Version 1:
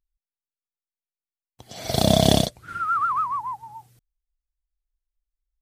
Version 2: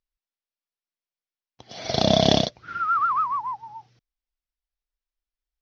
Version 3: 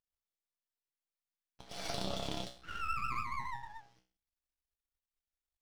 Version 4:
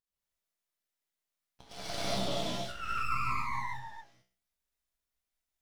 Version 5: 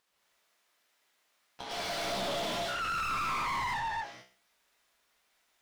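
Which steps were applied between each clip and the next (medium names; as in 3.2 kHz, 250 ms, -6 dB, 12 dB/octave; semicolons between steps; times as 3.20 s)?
elliptic low-pass 5.7 kHz, stop band 40 dB; bass shelf 110 Hz -11 dB; trim +1.5 dB
compression 6:1, threshold -30 dBFS, peak gain reduction 16.5 dB; feedback comb 63 Hz, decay 0.41 s, harmonics odd, mix 90%; half-wave rectifier; trim +9.5 dB
gated-style reverb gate 250 ms rising, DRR -7 dB; trim -2.5 dB
overdrive pedal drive 37 dB, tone 2.5 kHz, clips at -18 dBFS; trim -7.5 dB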